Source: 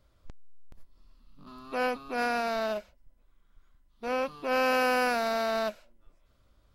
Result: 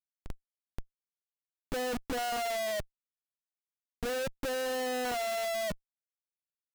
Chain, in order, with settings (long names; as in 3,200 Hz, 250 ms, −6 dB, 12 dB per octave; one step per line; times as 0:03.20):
spectral peaks only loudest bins 4
comparator with hysteresis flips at −42 dBFS
level +2.5 dB